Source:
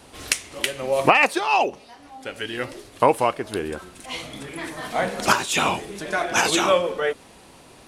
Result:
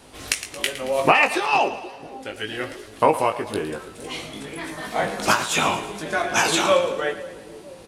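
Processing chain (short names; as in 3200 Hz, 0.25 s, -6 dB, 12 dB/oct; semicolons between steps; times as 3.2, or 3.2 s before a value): doubler 19 ms -5.5 dB; split-band echo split 490 Hz, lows 0.478 s, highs 0.112 s, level -13 dB; ending taper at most 270 dB/s; gain -1 dB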